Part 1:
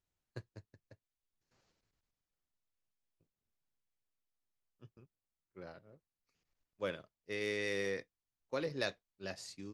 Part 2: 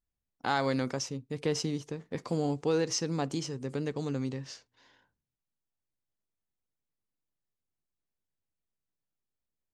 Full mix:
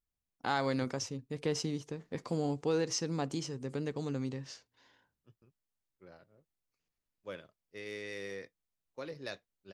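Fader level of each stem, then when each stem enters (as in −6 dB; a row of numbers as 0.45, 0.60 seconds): −5.5, −3.0 decibels; 0.45, 0.00 seconds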